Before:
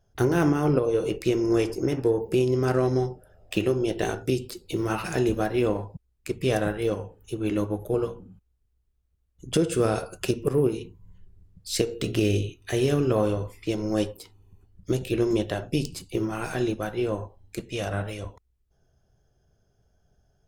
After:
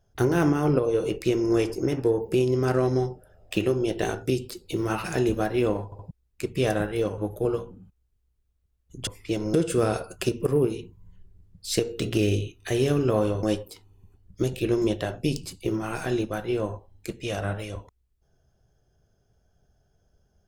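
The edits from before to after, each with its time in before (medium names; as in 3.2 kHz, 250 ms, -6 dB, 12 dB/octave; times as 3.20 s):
5.85 s: stutter 0.07 s, 3 plays
7.04–7.67 s: delete
13.45–13.92 s: move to 9.56 s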